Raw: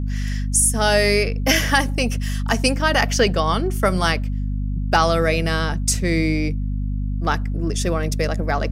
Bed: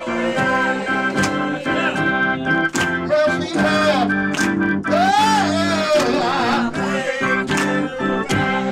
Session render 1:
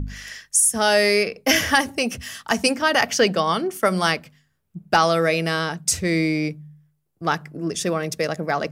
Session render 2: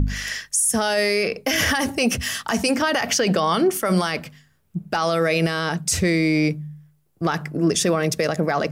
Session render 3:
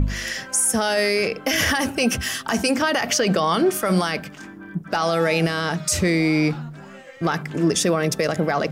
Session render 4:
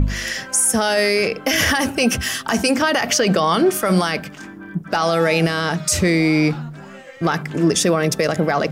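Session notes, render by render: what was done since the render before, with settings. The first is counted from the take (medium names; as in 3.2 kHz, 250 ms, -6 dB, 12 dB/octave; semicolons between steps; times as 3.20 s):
de-hum 50 Hz, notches 5
in parallel at +1 dB: compressor with a negative ratio -23 dBFS; on the sum: peak limiter -10.5 dBFS, peak gain reduction 10.5 dB
add bed -21 dB
trim +3 dB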